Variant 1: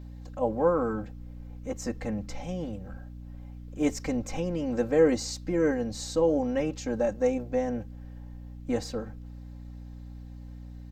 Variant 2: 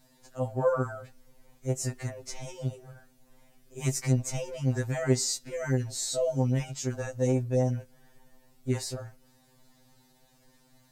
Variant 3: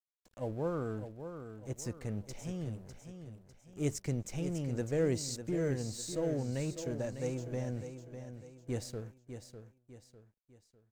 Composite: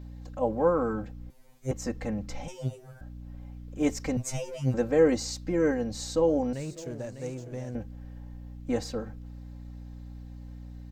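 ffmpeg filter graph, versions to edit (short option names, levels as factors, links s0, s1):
-filter_complex "[1:a]asplit=3[s0][s1][s2];[0:a]asplit=5[s3][s4][s5][s6][s7];[s3]atrim=end=1.302[s8];[s0]atrim=start=1.298:end=1.712[s9];[s4]atrim=start=1.708:end=2.482[s10];[s1]atrim=start=2.478:end=3.012[s11];[s5]atrim=start=3.008:end=4.172[s12];[s2]atrim=start=4.168:end=4.742[s13];[s6]atrim=start=4.738:end=6.532[s14];[2:a]atrim=start=6.528:end=7.752[s15];[s7]atrim=start=7.748[s16];[s8][s9]acrossfade=d=0.004:c1=hsin:c2=hsin[s17];[s17][s10]acrossfade=d=0.004:c1=hsin:c2=hsin[s18];[s18][s11]acrossfade=d=0.004:c1=hsin:c2=hsin[s19];[s19][s12]acrossfade=d=0.004:c1=hsin:c2=hsin[s20];[s20][s13]acrossfade=d=0.004:c1=hsin:c2=hsin[s21];[s21][s14]acrossfade=d=0.004:c1=hsin:c2=hsin[s22];[s22][s15]acrossfade=d=0.004:c1=hsin:c2=hsin[s23];[s23][s16]acrossfade=d=0.004:c1=hsin:c2=hsin"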